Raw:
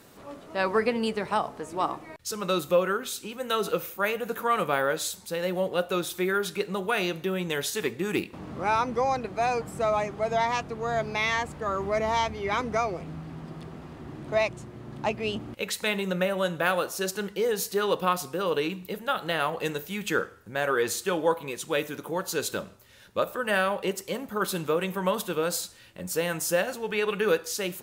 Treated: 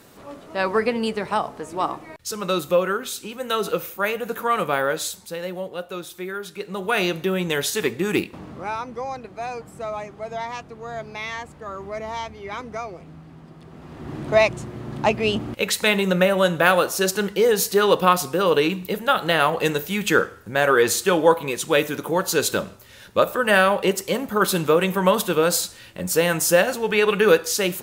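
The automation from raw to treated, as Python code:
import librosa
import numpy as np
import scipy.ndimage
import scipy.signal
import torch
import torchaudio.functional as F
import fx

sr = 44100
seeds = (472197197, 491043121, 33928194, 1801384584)

y = fx.gain(x, sr, db=fx.line((5.03, 3.5), (5.74, -4.5), (6.53, -4.5), (6.98, 6.0), (8.2, 6.0), (8.77, -4.5), (13.6, -4.5), (14.15, 8.5)))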